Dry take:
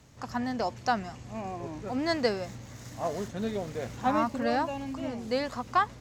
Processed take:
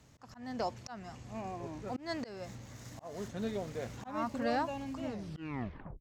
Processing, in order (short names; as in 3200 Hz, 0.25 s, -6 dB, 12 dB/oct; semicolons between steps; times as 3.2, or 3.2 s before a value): tape stop at the end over 0.95 s; auto swell 0.265 s; gain -4.5 dB